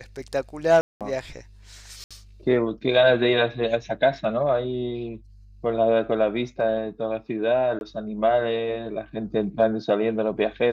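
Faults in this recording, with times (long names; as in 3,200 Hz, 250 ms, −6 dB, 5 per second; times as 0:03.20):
0:00.81–0:01.01: drop-out 197 ms
0:02.04–0:02.11: drop-out 66 ms
0:07.79–0:07.81: drop-out 21 ms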